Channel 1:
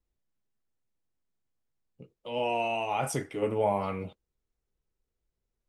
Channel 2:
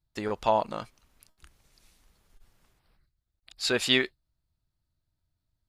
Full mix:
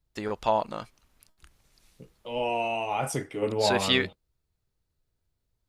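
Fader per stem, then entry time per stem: +1.0, −0.5 decibels; 0.00, 0.00 seconds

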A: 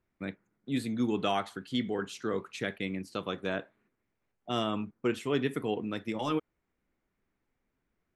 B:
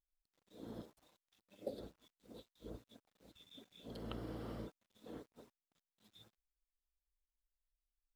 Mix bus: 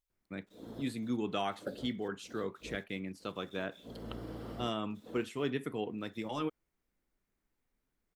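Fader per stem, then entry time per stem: −5.0, +2.5 decibels; 0.10, 0.00 seconds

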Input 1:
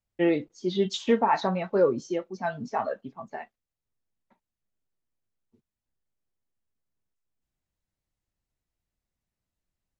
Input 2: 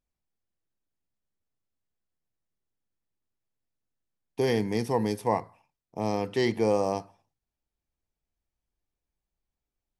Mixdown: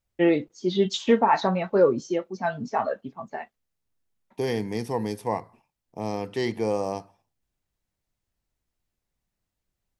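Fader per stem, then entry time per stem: +3.0, −1.5 decibels; 0.00, 0.00 seconds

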